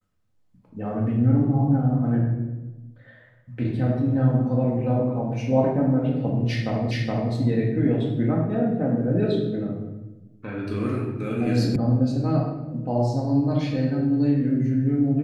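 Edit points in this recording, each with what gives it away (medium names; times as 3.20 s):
6.91 s: repeat of the last 0.42 s
11.76 s: sound stops dead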